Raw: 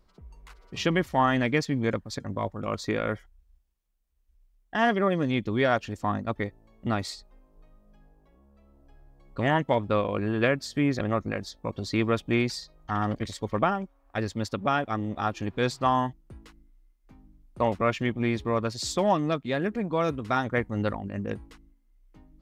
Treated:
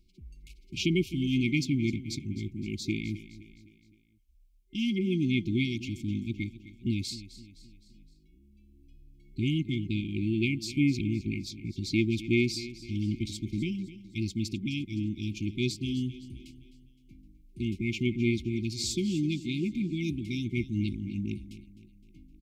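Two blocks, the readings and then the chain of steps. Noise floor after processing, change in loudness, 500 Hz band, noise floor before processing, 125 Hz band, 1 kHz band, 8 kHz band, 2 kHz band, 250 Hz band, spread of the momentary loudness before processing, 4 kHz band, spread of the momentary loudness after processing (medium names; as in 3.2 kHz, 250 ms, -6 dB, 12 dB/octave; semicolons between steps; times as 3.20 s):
-61 dBFS, -3.5 dB, -10.0 dB, -65 dBFS, 0.0 dB, under -40 dB, 0.0 dB, -6.0 dB, 0.0 dB, 9 LU, 0.0 dB, 10 LU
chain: on a send: feedback delay 258 ms, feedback 48%, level -15.5 dB; on the sum: FFT band-reject 380–2100 Hz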